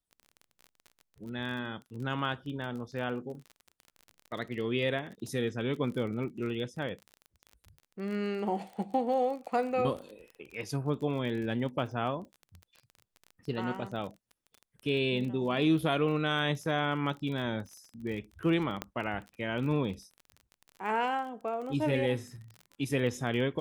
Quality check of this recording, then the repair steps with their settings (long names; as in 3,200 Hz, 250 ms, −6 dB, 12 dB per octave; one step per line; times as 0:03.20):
surface crackle 29 per second −39 dBFS
0:18.82: click −18 dBFS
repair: click removal